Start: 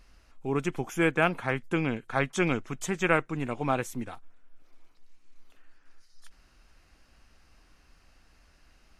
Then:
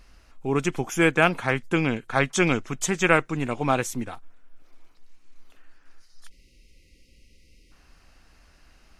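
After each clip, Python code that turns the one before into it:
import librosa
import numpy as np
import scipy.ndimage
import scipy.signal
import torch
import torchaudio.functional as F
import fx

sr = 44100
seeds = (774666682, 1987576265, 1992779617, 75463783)

y = fx.spec_erase(x, sr, start_s=6.28, length_s=1.44, low_hz=570.0, high_hz=1900.0)
y = fx.dynamic_eq(y, sr, hz=5900.0, q=0.7, threshold_db=-49.0, ratio=4.0, max_db=6)
y = F.gain(torch.from_numpy(y), 4.5).numpy()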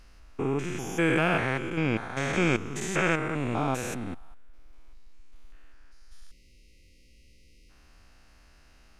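y = fx.spec_steps(x, sr, hold_ms=200)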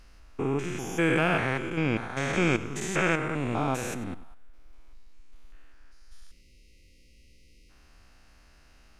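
y = x + 10.0 ** (-17.0 / 20.0) * np.pad(x, (int(96 * sr / 1000.0), 0))[:len(x)]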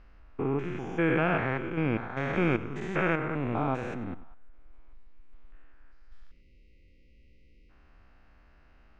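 y = scipy.signal.sosfilt(scipy.signal.butter(2, 2100.0, 'lowpass', fs=sr, output='sos'), x)
y = F.gain(torch.from_numpy(y), -1.0).numpy()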